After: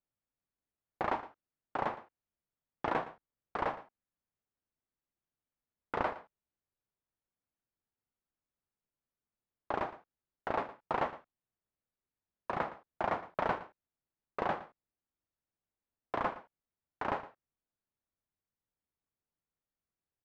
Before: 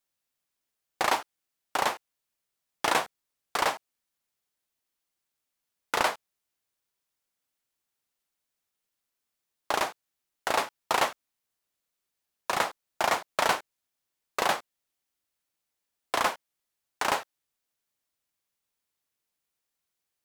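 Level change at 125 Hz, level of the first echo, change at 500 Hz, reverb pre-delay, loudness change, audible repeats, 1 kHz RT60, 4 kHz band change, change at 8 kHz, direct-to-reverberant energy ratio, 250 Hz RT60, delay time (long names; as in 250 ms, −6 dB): +1.0 dB, −16.0 dB, −5.0 dB, no reverb audible, −8.5 dB, 1, no reverb audible, −20.5 dB, below −30 dB, no reverb audible, no reverb audible, 115 ms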